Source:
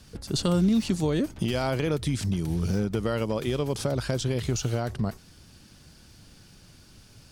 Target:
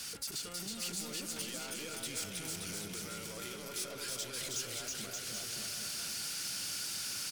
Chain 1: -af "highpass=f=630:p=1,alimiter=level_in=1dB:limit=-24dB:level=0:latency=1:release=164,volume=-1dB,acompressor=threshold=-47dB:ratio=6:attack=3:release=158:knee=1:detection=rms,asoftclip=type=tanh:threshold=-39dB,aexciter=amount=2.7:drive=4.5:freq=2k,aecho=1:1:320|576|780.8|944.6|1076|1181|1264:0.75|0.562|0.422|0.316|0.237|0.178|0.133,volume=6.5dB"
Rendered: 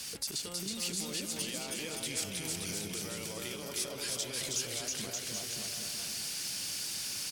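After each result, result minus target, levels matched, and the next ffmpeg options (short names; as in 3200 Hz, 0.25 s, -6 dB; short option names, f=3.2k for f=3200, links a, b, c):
soft clip: distortion -15 dB; 1000 Hz band -3.0 dB
-af "highpass=f=630:p=1,alimiter=level_in=1dB:limit=-24dB:level=0:latency=1:release=164,volume=-1dB,acompressor=threshold=-47dB:ratio=6:attack=3:release=158:knee=1:detection=rms,asoftclip=type=tanh:threshold=-51dB,aexciter=amount=2.7:drive=4.5:freq=2k,aecho=1:1:320|576|780.8|944.6|1076|1181|1264:0.75|0.562|0.422|0.316|0.237|0.178|0.133,volume=6.5dB"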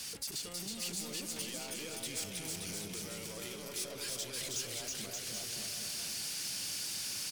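1000 Hz band -3.0 dB
-af "highpass=f=630:p=1,equalizer=f=1.4k:t=o:w=0.2:g=10.5,alimiter=level_in=1dB:limit=-24dB:level=0:latency=1:release=164,volume=-1dB,acompressor=threshold=-47dB:ratio=6:attack=3:release=158:knee=1:detection=rms,asoftclip=type=tanh:threshold=-51dB,aexciter=amount=2.7:drive=4.5:freq=2k,aecho=1:1:320|576|780.8|944.6|1076|1181|1264:0.75|0.562|0.422|0.316|0.237|0.178|0.133,volume=6.5dB"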